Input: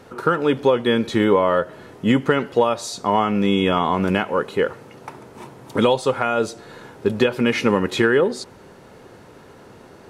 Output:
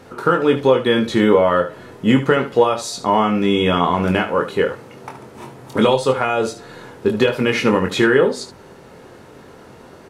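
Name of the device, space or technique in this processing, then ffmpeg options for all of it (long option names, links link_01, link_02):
slapback doubling: -filter_complex "[0:a]asplit=3[link_01][link_02][link_03];[link_02]adelay=23,volume=-5.5dB[link_04];[link_03]adelay=75,volume=-12dB[link_05];[link_01][link_04][link_05]amix=inputs=3:normalize=0,volume=1.5dB"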